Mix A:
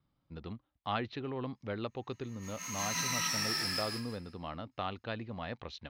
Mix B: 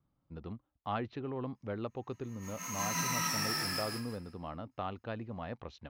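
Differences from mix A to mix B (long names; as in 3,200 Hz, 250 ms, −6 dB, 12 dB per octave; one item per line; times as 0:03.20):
background +5.0 dB
master: add octave-band graphic EQ 2,000/4,000/8,000 Hz −4/−9/−3 dB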